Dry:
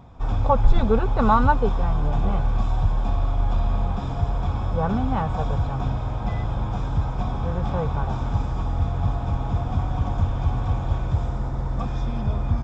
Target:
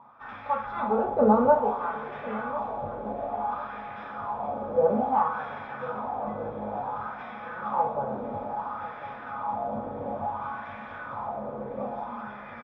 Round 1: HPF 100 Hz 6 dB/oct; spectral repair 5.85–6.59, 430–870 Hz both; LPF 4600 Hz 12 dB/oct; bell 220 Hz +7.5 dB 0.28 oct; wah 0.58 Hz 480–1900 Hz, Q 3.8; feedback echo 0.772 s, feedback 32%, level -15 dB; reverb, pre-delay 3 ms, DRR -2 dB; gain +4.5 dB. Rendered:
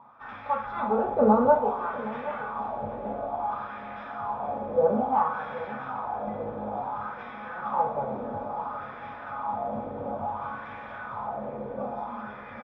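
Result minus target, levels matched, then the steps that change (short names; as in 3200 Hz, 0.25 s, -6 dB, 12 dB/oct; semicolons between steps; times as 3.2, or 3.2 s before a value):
echo 0.277 s early
change: feedback echo 1.049 s, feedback 32%, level -15 dB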